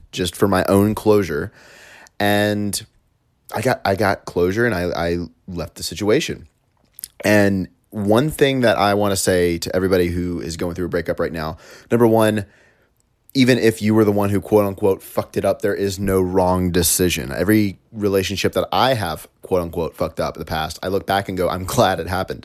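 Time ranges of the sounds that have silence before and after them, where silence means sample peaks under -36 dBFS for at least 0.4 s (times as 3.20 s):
3.49–6.45 s
6.99–12.44 s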